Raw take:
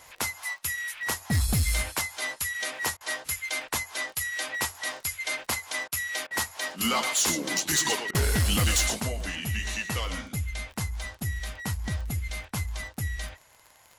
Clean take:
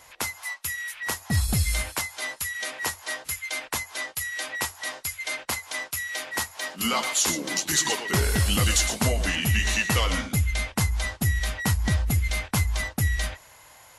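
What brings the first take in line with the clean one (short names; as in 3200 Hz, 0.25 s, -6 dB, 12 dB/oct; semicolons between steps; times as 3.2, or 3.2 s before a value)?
clip repair -19.5 dBFS; de-click; interpolate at 2.97/5.88/6.27/8.11, 36 ms; gain 0 dB, from 9 s +7.5 dB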